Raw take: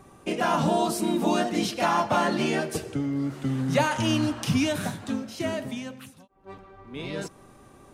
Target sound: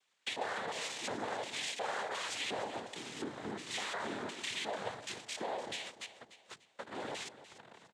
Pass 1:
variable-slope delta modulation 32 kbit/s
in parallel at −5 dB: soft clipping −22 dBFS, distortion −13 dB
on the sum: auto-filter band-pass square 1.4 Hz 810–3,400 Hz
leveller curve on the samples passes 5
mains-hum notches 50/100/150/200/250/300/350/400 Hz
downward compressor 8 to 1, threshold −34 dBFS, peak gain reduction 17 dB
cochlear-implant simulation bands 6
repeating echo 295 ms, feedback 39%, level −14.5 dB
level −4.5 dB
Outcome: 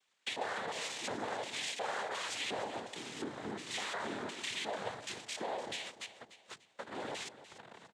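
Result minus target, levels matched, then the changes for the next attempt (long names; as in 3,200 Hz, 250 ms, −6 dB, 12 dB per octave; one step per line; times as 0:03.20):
soft clipping: distortion +10 dB
change: soft clipping −14.5 dBFS, distortion −22 dB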